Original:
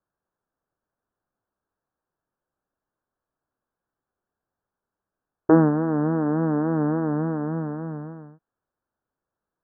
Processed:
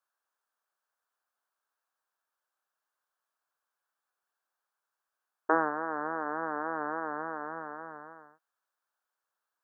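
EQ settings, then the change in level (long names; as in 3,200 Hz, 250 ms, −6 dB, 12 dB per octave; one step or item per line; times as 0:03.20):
high-pass filter 1,100 Hz 12 dB per octave
+4.0 dB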